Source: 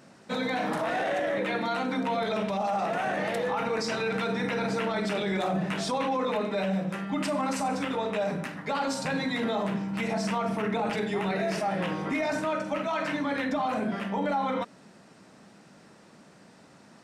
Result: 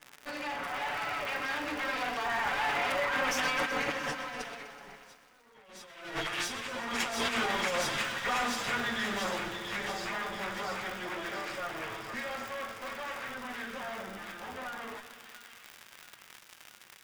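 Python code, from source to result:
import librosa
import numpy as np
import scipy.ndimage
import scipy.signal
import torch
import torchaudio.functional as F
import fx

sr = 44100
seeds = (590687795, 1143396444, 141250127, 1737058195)

p1 = fx.lower_of_two(x, sr, delay_ms=8.0)
p2 = fx.doppler_pass(p1, sr, speed_mps=45, closest_m=10.0, pass_at_s=5.21)
p3 = fx.dmg_crackle(p2, sr, seeds[0], per_s=76.0, level_db=-53.0)
p4 = fx.peak_eq(p3, sr, hz=1700.0, db=10.5, octaves=2.7)
p5 = fx.notch(p4, sr, hz=4200.0, q=15.0)
p6 = p5 + fx.echo_wet_highpass(p5, sr, ms=683, feedback_pct=56, hz=2700.0, wet_db=-3.0, dry=0)
p7 = fx.over_compress(p6, sr, threshold_db=-44.0, ratio=-0.5)
p8 = fx.high_shelf(p7, sr, hz=7900.0, db=4.5)
p9 = fx.echo_crushed(p8, sr, ms=125, feedback_pct=80, bits=11, wet_db=-13.0)
y = p9 * 10.0 ** (8.5 / 20.0)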